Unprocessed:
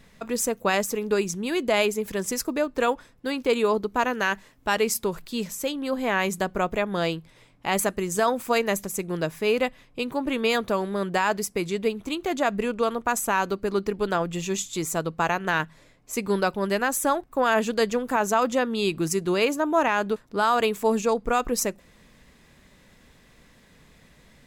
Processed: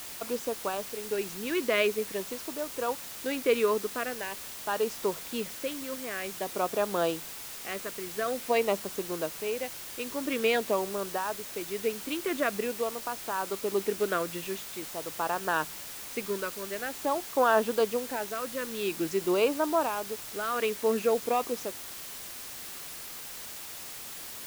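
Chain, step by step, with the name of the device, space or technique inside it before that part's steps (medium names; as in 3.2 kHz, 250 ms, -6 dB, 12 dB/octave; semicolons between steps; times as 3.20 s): shortwave radio (band-pass 310–2800 Hz; tremolo 0.57 Hz, depth 65%; LFO notch sine 0.47 Hz 760–2200 Hz; white noise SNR 10 dB)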